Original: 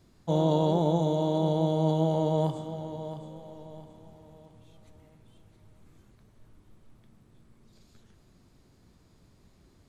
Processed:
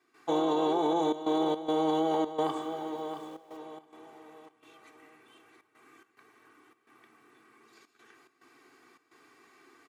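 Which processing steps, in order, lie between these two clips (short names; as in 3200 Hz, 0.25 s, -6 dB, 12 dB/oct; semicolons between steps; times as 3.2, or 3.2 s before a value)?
HPF 220 Hz 24 dB/oct; band shelf 1600 Hz +11 dB; comb 2.6 ms, depth 92%; limiter -19 dBFS, peak gain reduction 7.5 dB; 1.2–3.57 sample gate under -54.5 dBFS; step gate ".xxxxxxx.xx.xxxx" 107 bpm -12 dB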